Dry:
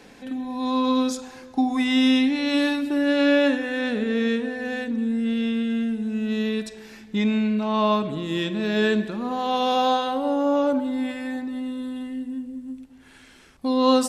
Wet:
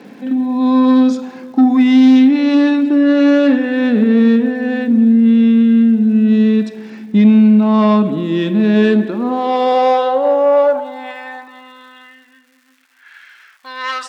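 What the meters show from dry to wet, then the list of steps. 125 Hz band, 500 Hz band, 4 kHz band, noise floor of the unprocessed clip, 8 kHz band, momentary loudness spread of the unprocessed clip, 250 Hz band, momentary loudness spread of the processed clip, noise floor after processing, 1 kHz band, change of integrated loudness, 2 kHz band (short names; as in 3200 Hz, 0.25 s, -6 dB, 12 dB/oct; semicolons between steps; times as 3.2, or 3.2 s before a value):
+13.0 dB, +8.5 dB, 0.0 dB, -49 dBFS, n/a, 12 LU, +12.0 dB, 12 LU, -51 dBFS, +6.5 dB, +11.5 dB, +4.0 dB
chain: LPF 6300 Hz 12 dB/oct; high shelf 3900 Hz -11.5 dB; added harmonics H 5 -16 dB, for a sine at -8 dBFS; crackle 380/s -47 dBFS; high-pass sweep 210 Hz -> 1600 Hz, 8.67–12.37; gain +2.5 dB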